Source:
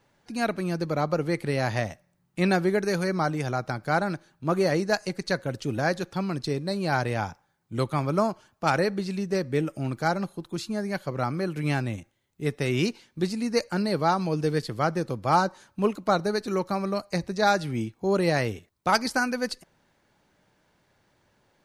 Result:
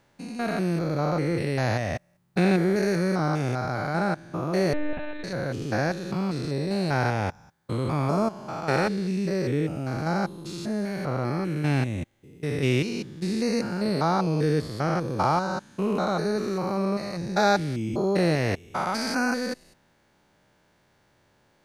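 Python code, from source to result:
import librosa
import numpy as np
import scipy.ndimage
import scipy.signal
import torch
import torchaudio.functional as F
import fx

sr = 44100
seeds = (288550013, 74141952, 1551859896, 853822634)

y = fx.spec_steps(x, sr, hold_ms=200)
y = fx.lpc_monotone(y, sr, seeds[0], pitch_hz=300.0, order=10, at=(4.73, 5.24))
y = y * librosa.db_to_amplitude(4.0)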